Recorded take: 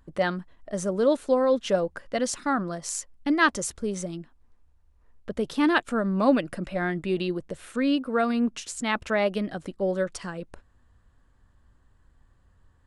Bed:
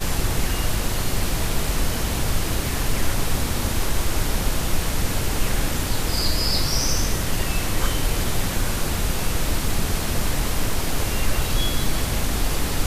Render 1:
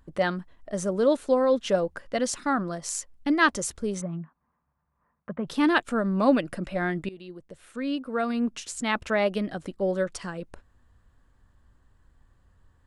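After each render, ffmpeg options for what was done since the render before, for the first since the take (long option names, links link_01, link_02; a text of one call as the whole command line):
ffmpeg -i in.wav -filter_complex "[0:a]asplit=3[link_01][link_02][link_03];[link_01]afade=type=out:start_time=4:duration=0.02[link_04];[link_02]highpass=150,equalizer=frequency=160:width_type=q:width=4:gain=9,equalizer=frequency=310:width_type=q:width=4:gain=-8,equalizer=frequency=440:width_type=q:width=4:gain=-8,equalizer=frequency=1100:width_type=q:width=4:gain=8,lowpass=frequency=2000:width=0.5412,lowpass=frequency=2000:width=1.3066,afade=type=in:start_time=4:duration=0.02,afade=type=out:start_time=5.46:duration=0.02[link_05];[link_03]afade=type=in:start_time=5.46:duration=0.02[link_06];[link_04][link_05][link_06]amix=inputs=3:normalize=0,asplit=2[link_07][link_08];[link_07]atrim=end=7.09,asetpts=PTS-STARTPTS,afade=type=out:start_time=7.086:duration=0.004:curve=hsin:silence=0.1[link_09];[link_08]atrim=start=7.09,asetpts=PTS-STARTPTS,afade=type=in:duration=1.71:silence=0.1[link_10];[link_09][link_10]concat=n=2:v=0:a=1" out.wav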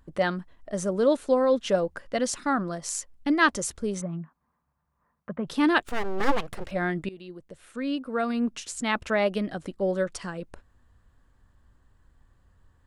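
ffmpeg -i in.wav -filter_complex "[0:a]asettb=1/sr,asplit=3[link_01][link_02][link_03];[link_01]atrim=end=5.814[link_04];[link_02]atrim=start=5.81:end=6.71,asetpts=PTS-STARTPTS,afade=type=in:duration=0.004:curve=qsin,afade=type=out:start_time=0.896:duration=0.004:curve=qsin,aeval=exprs='abs(val(0))':channel_layout=same[link_05];[link_03]atrim=start=6.706[link_06];[link_04][link_05]acrossfade=duration=0.004:curve1=hsin:curve2=qsin[link_07];[link_07][link_06]acrossfade=duration=0.004:curve1=qsin:curve2=hsin" out.wav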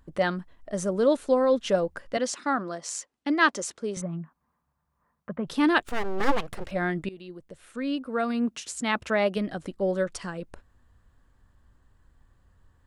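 ffmpeg -i in.wav -filter_complex "[0:a]asettb=1/sr,asplit=3[link_01][link_02][link_03];[link_01]atrim=end=2.174[link_04];[link_02]atrim=start=2.17:end=3.97,asetpts=PTS-STARTPTS,afade=type=in:duration=0.004:curve=qsin,afade=type=out:start_time=1.796:duration=0.004:curve=qsin,highpass=260,lowpass=7800[link_05];[link_03]atrim=start=3.966[link_06];[link_04][link_05]acrossfade=duration=0.004:curve1=hsin:curve2=qsin[link_07];[link_07][link_06]acrossfade=duration=0.004:curve1=qsin:curve2=hsin,asettb=1/sr,asplit=3[link_08][link_09][link_10];[link_08]atrim=end=8.064[link_11];[link_09]atrim=start=8.06:end=9.37,asetpts=PTS-STARTPTS,afade=type=in:duration=0.004:curve=qsin,afade=type=out:start_time=1.306:duration=0.004:curve=qsin,highpass=71[link_12];[link_10]atrim=start=9.366[link_13];[link_11][link_12]acrossfade=duration=0.004:curve1=hsin:curve2=qsin[link_14];[link_14][link_13]acrossfade=duration=0.004:curve1=qsin:curve2=hsin" out.wav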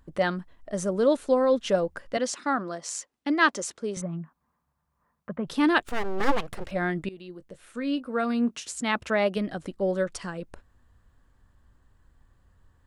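ffmpeg -i in.wav -filter_complex "[0:a]asettb=1/sr,asplit=3[link_01][link_02][link_03];[link_01]atrim=end=7.334[link_04];[link_02]atrim=start=7.33:end=8.68,asetpts=PTS-STARTPTS,afade=type=in:duration=0.004:curve=qsin,afade=type=out:start_time=1.346:duration=0.004:curve=qsin,asplit=2[link_05][link_06];[link_06]adelay=21,volume=-13dB[link_07];[link_05][link_07]amix=inputs=2:normalize=0,atrim=end_sample=59535[link_08];[link_03]atrim=start=8.676[link_09];[link_04][link_08]acrossfade=duration=0.004:curve1=hsin:curve2=qsin[link_10];[link_10][link_09]acrossfade=duration=0.004:curve1=qsin:curve2=hsin" out.wav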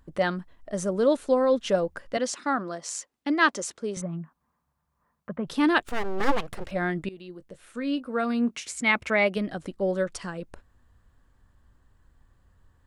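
ffmpeg -i in.wav -filter_complex "[0:a]asettb=1/sr,asplit=3[link_01][link_02][link_03];[link_01]atrim=end=8.544[link_04];[link_02]atrim=start=8.54:end=9.33,asetpts=PTS-STARTPTS,afade=type=in:duration=0.004:curve=qsin,afade=type=out:start_time=0.786:duration=0.004:curve=qsin,equalizer=frequency=2200:width_type=o:width=0.24:gain=12.5[link_05];[link_03]atrim=start=9.326[link_06];[link_04][link_05]acrossfade=duration=0.004:curve1=hsin:curve2=qsin[link_07];[link_07][link_06]acrossfade=duration=0.004:curve1=qsin:curve2=hsin" out.wav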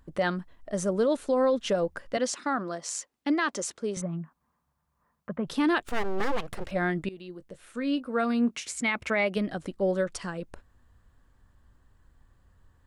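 ffmpeg -i in.wav -af "alimiter=limit=-17dB:level=0:latency=1:release=70" out.wav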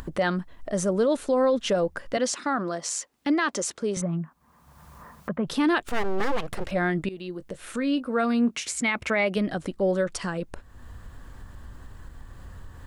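ffmpeg -i in.wav -filter_complex "[0:a]asplit=2[link_01][link_02];[link_02]alimiter=level_in=3.5dB:limit=-24dB:level=0:latency=1:release=30,volume=-3.5dB,volume=-1dB[link_03];[link_01][link_03]amix=inputs=2:normalize=0,acompressor=mode=upward:threshold=-29dB:ratio=2.5" out.wav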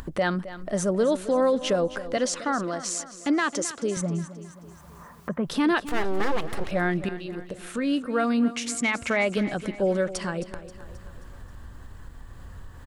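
ffmpeg -i in.wav -af "aecho=1:1:266|532|798|1064|1330:0.188|0.0979|0.0509|0.0265|0.0138" out.wav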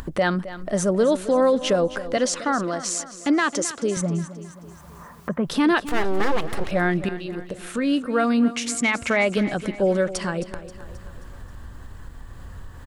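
ffmpeg -i in.wav -af "volume=3.5dB" out.wav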